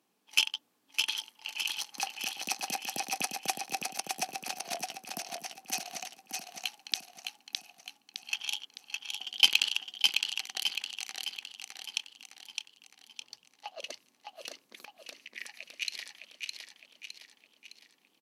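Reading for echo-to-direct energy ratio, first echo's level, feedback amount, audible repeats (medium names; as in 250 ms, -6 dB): -3.0 dB, -4.0 dB, 48%, 5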